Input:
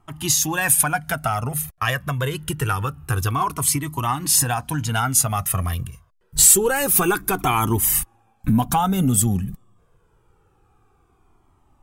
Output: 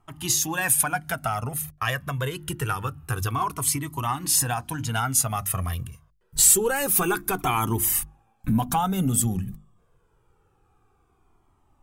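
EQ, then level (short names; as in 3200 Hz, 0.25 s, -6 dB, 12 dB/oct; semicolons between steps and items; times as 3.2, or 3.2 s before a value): notches 50/100/150/200/250/300/350 Hz; -4.0 dB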